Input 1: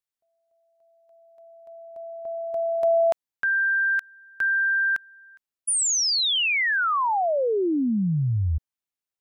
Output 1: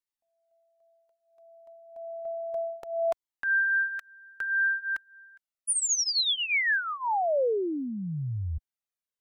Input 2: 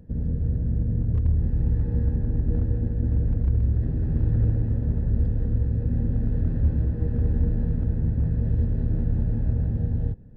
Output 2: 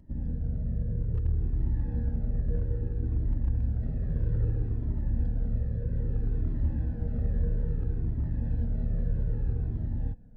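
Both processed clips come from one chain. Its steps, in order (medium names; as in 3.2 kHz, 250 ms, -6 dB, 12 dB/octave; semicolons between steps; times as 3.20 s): peaking EQ 82 Hz -5.5 dB 1.7 oct; Shepard-style flanger falling 0.61 Hz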